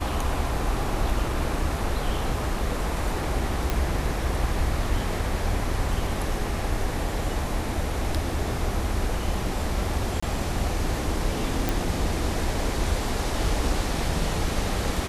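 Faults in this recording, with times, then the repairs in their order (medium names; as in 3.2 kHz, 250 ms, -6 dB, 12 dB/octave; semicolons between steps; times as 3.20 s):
3.70 s: pop
10.20–10.22 s: dropout 25 ms
11.69 s: pop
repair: de-click; interpolate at 10.20 s, 25 ms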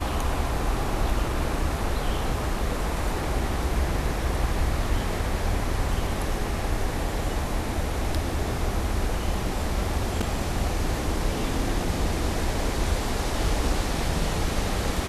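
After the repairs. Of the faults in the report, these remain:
nothing left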